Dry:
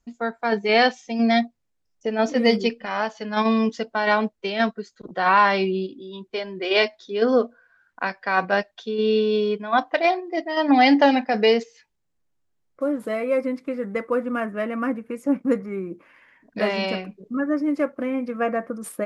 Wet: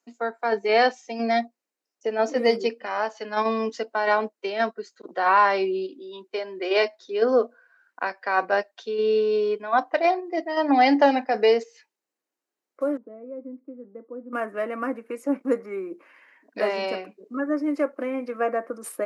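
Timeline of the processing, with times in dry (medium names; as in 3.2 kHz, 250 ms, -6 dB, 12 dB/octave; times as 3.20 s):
12.97–14.33 s: ladder band-pass 270 Hz, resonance 50%
whole clip: high-pass 290 Hz 24 dB/octave; band-stop 3.4 kHz, Q 12; dynamic bell 3.1 kHz, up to -6 dB, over -38 dBFS, Q 0.77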